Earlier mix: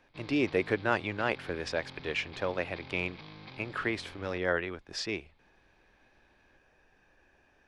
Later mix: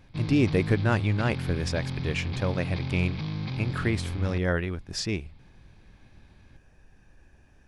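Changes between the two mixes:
background +6.5 dB; master: remove three-band isolator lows -16 dB, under 320 Hz, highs -13 dB, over 5 kHz

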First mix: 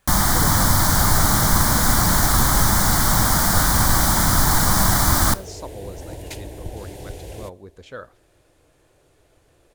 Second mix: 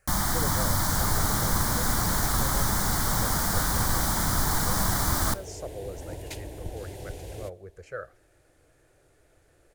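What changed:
speech: add static phaser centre 950 Hz, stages 6; first sound -8.5 dB; second sound -4.0 dB

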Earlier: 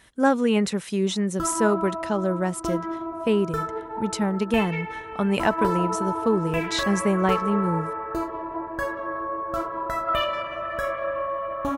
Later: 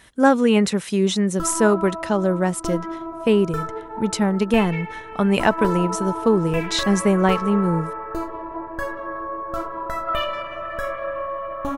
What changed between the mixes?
speech +4.5 dB; background: remove high-pass 44 Hz

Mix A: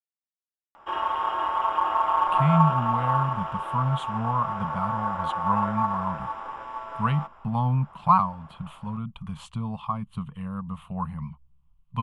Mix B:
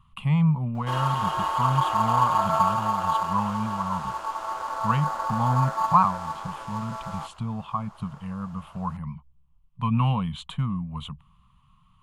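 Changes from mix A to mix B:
speech: entry -2.15 s; background: remove Savitzky-Golay filter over 25 samples

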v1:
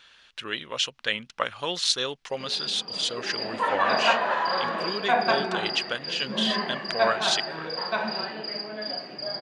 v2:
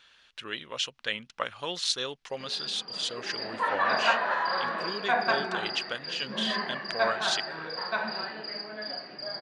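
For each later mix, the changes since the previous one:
speech -4.5 dB; background: add rippled Chebyshev low-pass 5.9 kHz, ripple 6 dB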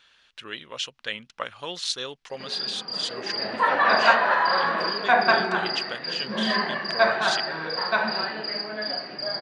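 background +7.0 dB

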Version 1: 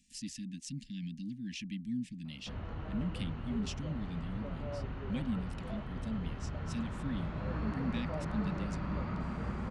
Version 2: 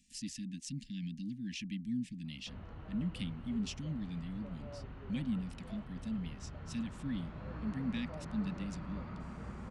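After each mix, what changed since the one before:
background -7.5 dB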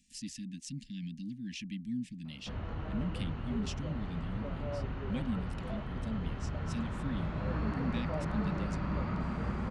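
background +10.0 dB

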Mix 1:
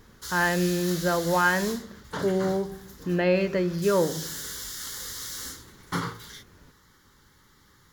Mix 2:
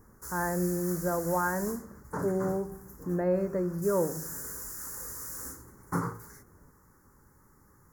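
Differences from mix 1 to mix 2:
speech -4.5 dB; master: add Butterworth band-stop 3.3 kHz, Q 0.5

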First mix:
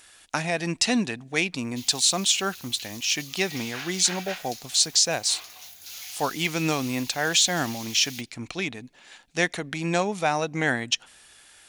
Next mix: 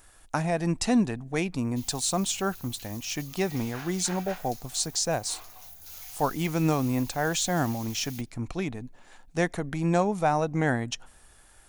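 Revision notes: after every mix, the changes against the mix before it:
master: remove frequency weighting D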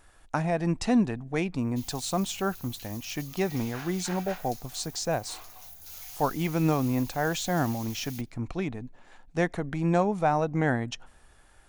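speech: add treble shelf 5.5 kHz -11.5 dB

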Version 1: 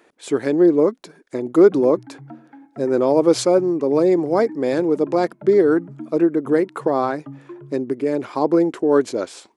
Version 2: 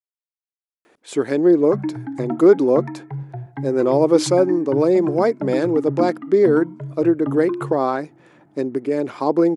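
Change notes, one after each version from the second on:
speech: entry +0.85 s; background +11.5 dB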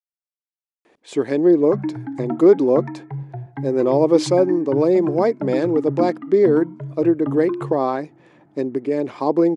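speech: add peaking EQ 1.4 kHz -8.5 dB 0.25 oct; master: add distance through air 51 m

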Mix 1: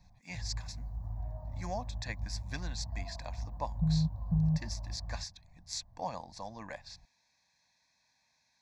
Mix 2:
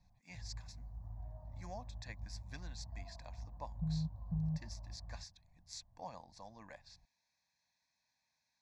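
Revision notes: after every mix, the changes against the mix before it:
speech -10.0 dB; background -8.5 dB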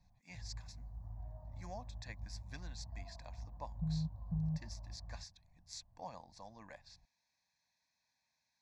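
no change

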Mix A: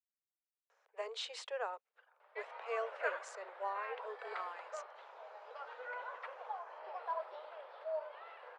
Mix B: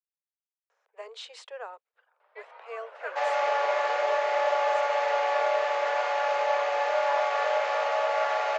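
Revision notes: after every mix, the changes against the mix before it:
second sound: unmuted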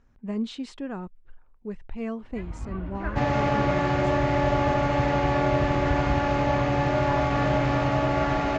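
speech: entry -0.70 s; master: remove steep high-pass 460 Hz 72 dB/octave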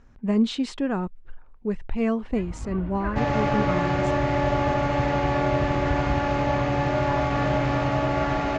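speech +8.0 dB

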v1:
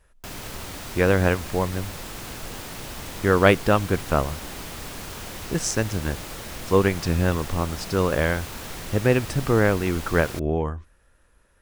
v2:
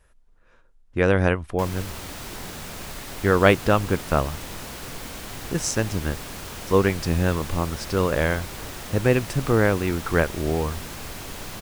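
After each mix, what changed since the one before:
background: entry +1.35 s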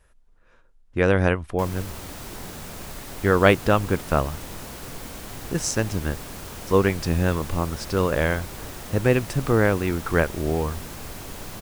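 background: add peaking EQ 2.9 kHz -4 dB 2.7 oct

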